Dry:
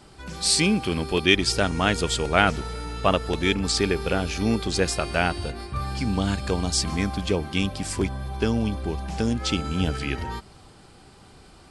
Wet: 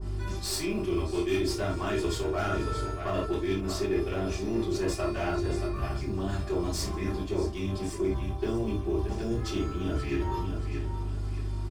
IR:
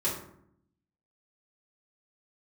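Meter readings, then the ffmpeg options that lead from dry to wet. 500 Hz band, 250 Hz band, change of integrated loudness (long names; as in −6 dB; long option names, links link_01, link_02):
−3.0 dB, −5.0 dB, −6.5 dB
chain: -filter_complex "[0:a]aecho=1:1:629|1258|1887:0.211|0.0655|0.0203,aeval=exprs='(tanh(6.31*val(0)+0.75)-tanh(0.75))/6.31':channel_layout=same,asplit=2[link_01][link_02];[link_02]acrusher=bits=5:mode=log:mix=0:aa=0.000001,volume=-8.5dB[link_03];[link_01][link_03]amix=inputs=2:normalize=0,aeval=exprs='val(0)+0.0178*(sin(2*PI*50*n/s)+sin(2*PI*2*50*n/s)/2+sin(2*PI*3*50*n/s)/3+sin(2*PI*4*50*n/s)/4+sin(2*PI*5*50*n/s)/5)':channel_layout=same[link_04];[1:a]atrim=start_sample=2205,atrim=end_sample=3969[link_05];[link_04][link_05]afir=irnorm=-1:irlink=0,areverse,acompressor=threshold=-23dB:ratio=6,areverse,aecho=1:1:2.9:0.61,adynamicequalizer=threshold=0.00631:dfrequency=1800:dqfactor=0.7:tfrequency=1800:tqfactor=0.7:attack=5:release=100:ratio=0.375:range=2:mode=cutabove:tftype=highshelf,volume=-4.5dB"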